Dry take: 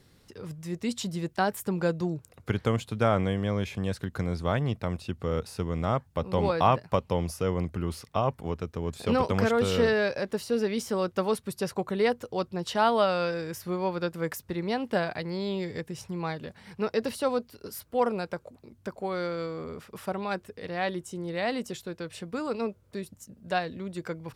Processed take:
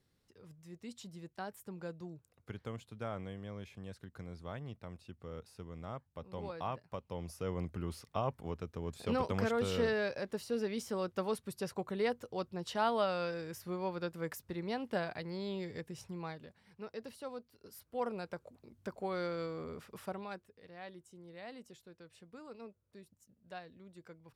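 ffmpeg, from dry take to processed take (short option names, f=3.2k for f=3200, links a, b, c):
-af "volume=2.5dB,afade=t=in:st=7.04:d=0.61:silence=0.375837,afade=t=out:st=16.06:d=0.56:silence=0.375837,afade=t=in:st=17.5:d=1.39:silence=0.281838,afade=t=out:st=19.86:d=0.62:silence=0.223872"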